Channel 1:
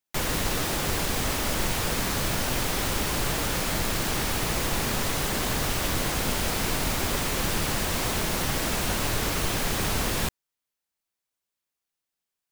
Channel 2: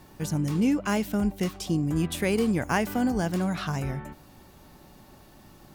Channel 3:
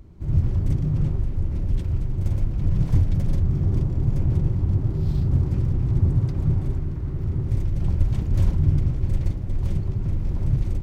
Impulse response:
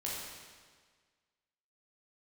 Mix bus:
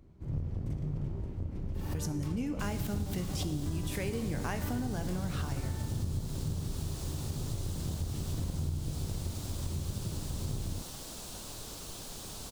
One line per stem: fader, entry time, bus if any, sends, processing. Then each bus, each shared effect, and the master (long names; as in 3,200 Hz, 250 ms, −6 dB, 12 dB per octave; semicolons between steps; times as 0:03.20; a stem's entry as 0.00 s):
−18.0 dB, 2.45 s, no send, octave-band graphic EQ 2,000/4,000/8,000 Hz −11/+5/+6 dB
−4.0 dB, 1.75 s, send −9 dB, tuned comb filter 59 Hz, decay 0.17 s, harmonics all, mix 60%; background raised ahead of every attack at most 93 dB per second
−11.5 dB, 0.00 s, send −5.5 dB, sub-octave generator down 2 octaves, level 0 dB; high-pass filter 87 Hz 6 dB per octave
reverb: on, RT60 1.6 s, pre-delay 13 ms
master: downward compressor 4 to 1, threshold −31 dBFS, peak gain reduction 10 dB